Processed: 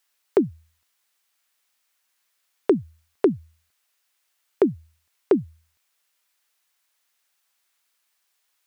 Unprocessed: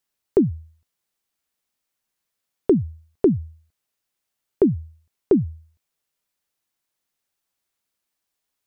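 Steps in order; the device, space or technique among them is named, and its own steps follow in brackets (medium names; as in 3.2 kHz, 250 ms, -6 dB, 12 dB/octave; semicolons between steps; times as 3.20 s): filter by subtraction (in parallel: low-pass 1.6 kHz 12 dB/octave + polarity flip); on the sum: trim +8 dB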